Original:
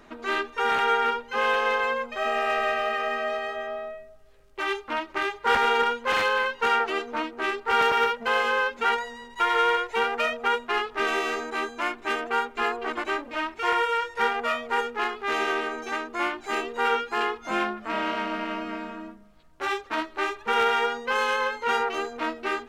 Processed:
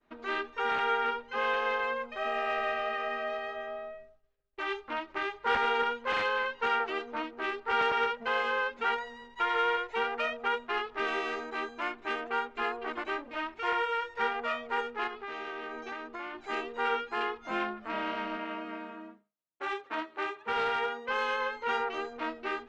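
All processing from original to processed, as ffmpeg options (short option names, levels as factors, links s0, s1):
-filter_complex "[0:a]asettb=1/sr,asplit=3[s0][s1][s2];[s0]atrim=end=15.074[s3];[s1]atrim=start=15.07:end=16.35,asetpts=PTS-STARTPTS,afade=t=in:d=0.004:c=qsin,afade=t=out:st=1.276:d=0.004:c=qsin,lowpass=7200,acompressor=threshold=0.0398:ratio=10:attack=3.2:release=140:knee=1:detection=peak[s4];[s2]atrim=start=16.346[s5];[s3][s4]acrossfade=d=0.004:c1=hsin:c2=qsin[s6];[s6][s5]acrossfade=d=0.004:c1=qsin:c2=hsin,asettb=1/sr,asplit=3[s7][s8][s9];[s7]atrim=end=18.374[s10];[s8]atrim=start=18.37:end=21.09,asetpts=PTS-STARTPTS,afade=t=in:d=0.004:c=qsin,afade=t=out:st=2.716:d=0.004:c=qsin,highpass=210,equalizer=f=5100:t=o:w=0.74:g=-5,volume=8.91,asoftclip=hard,volume=0.112[s11];[s9]atrim=start=21.086[s12];[s10][s11]acrossfade=d=0.004:c1=hsin:c2=qsin[s13];[s13][s12]acrossfade=d=0.004:c1=qsin:c2=hsin,lowpass=4500,agate=range=0.0224:threshold=0.00708:ratio=3:detection=peak,volume=0.501"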